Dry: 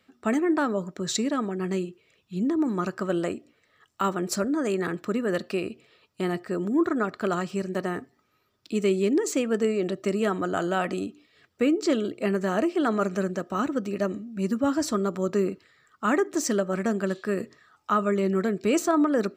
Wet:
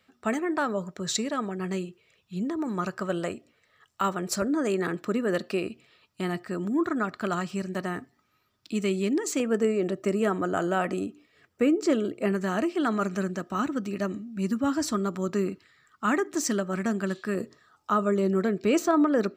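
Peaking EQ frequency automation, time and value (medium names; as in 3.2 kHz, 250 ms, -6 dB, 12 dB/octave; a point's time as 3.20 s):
peaking EQ -6.5 dB 0.86 oct
300 Hz
from 4.42 s 69 Hz
from 5.67 s 450 Hz
from 9.40 s 3.9 kHz
from 12.32 s 510 Hz
from 17.35 s 2.2 kHz
from 18.43 s 9.4 kHz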